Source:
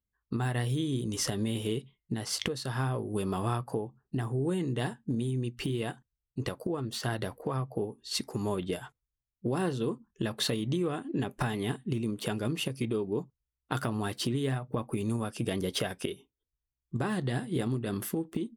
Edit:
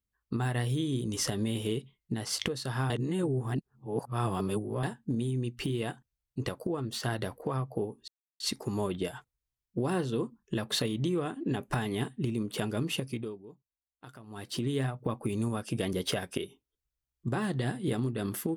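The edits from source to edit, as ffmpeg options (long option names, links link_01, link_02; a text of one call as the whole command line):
ffmpeg -i in.wav -filter_complex "[0:a]asplit=6[link_01][link_02][link_03][link_04][link_05][link_06];[link_01]atrim=end=2.902[link_07];[link_02]atrim=start=2.898:end=4.832,asetpts=PTS-STARTPTS,areverse[link_08];[link_03]atrim=start=4.828:end=8.08,asetpts=PTS-STARTPTS,afade=type=out:start_time=3.248:duration=0.004:curve=hsin,apad=pad_dur=0.32[link_09];[link_04]atrim=start=8.08:end=13.11,asetpts=PTS-STARTPTS,afade=type=in:duration=0.004:curve=hsin,afade=type=out:start_time=4.59:duration=0.44:silence=0.125893[link_10];[link_05]atrim=start=13.11:end=13.95,asetpts=PTS-STARTPTS,volume=-18dB[link_11];[link_06]atrim=start=13.95,asetpts=PTS-STARTPTS,afade=type=in:duration=0.44:silence=0.125893[link_12];[link_07][link_08]acrossfade=duration=0.004:curve1=hsin:curve2=hsin[link_13];[link_09][link_10][link_11][link_12]concat=n=4:v=0:a=1[link_14];[link_13][link_14]acrossfade=duration=0.004:curve1=hsin:curve2=hsin" out.wav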